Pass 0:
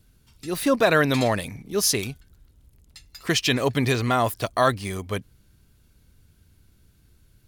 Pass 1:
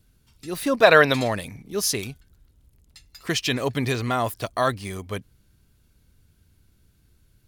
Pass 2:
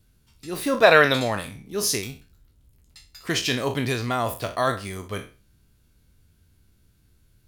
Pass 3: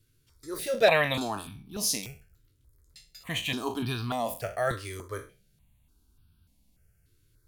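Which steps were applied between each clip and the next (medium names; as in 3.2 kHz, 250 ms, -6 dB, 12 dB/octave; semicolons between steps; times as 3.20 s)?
time-frequency box 0.83–1.13 s, 410–5700 Hz +8 dB; trim -2.5 dB
spectral sustain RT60 0.34 s; trim -1.5 dB
stepped phaser 3.4 Hz 200–2000 Hz; trim -3 dB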